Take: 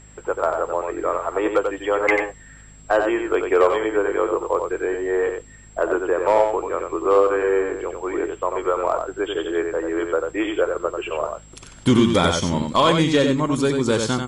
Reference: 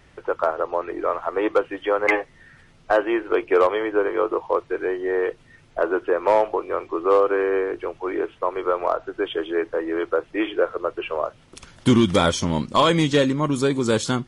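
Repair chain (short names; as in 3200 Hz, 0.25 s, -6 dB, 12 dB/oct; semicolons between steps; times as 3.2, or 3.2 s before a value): de-hum 52.2 Hz, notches 5; notch 7600 Hz, Q 30; inverse comb 91 ms -5.5 dB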